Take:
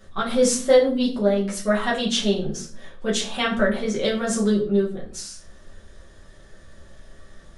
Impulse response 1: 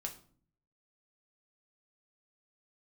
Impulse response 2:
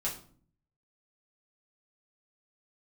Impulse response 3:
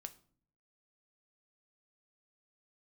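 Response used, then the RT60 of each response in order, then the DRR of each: 2; 0.50, 0.50, 0.50 seconds; 1.5, −6.0, 8.0 decibels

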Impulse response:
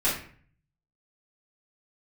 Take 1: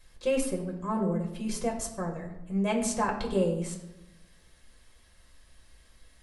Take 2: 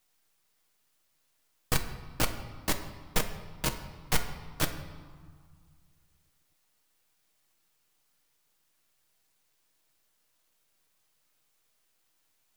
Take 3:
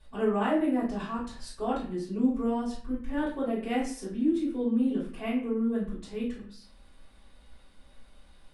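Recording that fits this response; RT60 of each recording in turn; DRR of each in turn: 3; 0.95, 1.8, 0.50 seconds; 0.0, 5.0, −10.0 decibels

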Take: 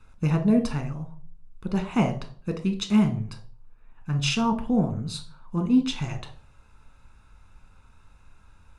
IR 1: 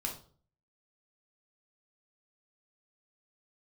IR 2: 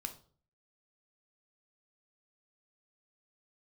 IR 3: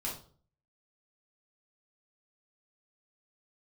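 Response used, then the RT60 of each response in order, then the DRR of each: 2; 0.45, 0.45, 0.45 seconds; 0.0, 6.0, −5.0 decibels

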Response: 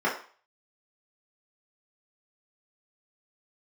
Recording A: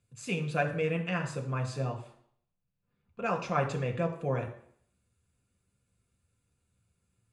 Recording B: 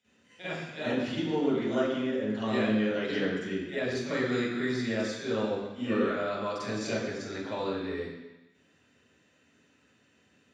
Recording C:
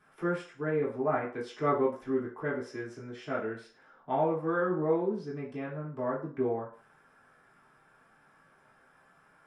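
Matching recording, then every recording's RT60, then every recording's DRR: C; 0.60, 1.0, 0.40 seconds; 2.5, −13.5, −7.5 decibels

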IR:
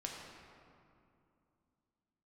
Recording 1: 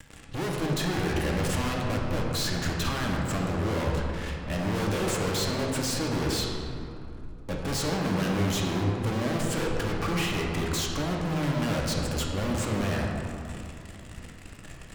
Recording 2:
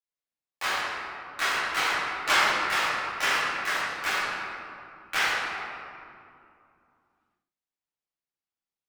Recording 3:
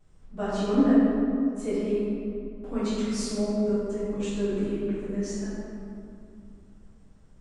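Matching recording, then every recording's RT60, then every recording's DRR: 1; 2.6, 2.6, 2.6 seconds; −1.5, −10.5, −20.0 decibels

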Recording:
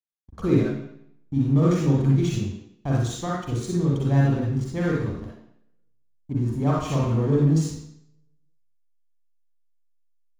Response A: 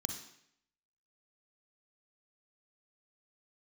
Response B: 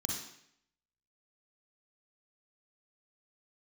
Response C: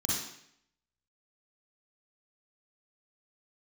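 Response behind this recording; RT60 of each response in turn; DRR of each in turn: C; 0.70, 0.70, 0.70 seconds; 4.5, −1.0, −5.5 decibels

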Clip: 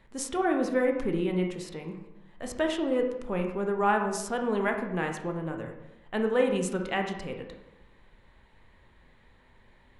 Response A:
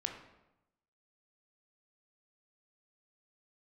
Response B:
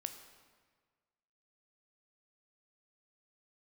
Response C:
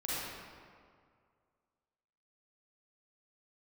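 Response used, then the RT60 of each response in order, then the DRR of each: A; 0.90, 1.6, 2.1 seconds; 3.0, 7.0, −9.0 decibels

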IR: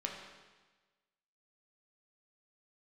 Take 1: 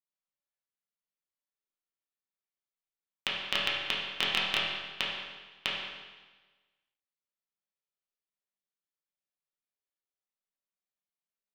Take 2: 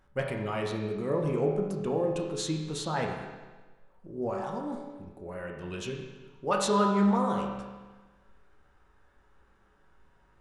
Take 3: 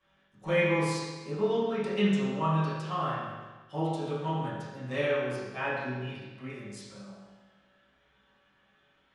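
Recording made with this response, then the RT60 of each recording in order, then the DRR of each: 2; 1.3, 1.3, 1.3 seconds; −6.5, −0.5, −14.0 decibels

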